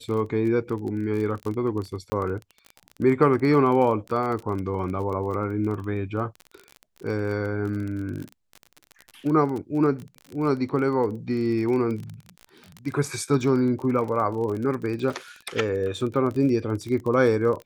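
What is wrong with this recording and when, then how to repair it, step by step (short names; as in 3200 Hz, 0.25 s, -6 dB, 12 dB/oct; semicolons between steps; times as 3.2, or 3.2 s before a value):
crackle 28/s -30 dBFS
2.1–2.12 gap 20 ms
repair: de-click; interpolate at 2.1, 20 ms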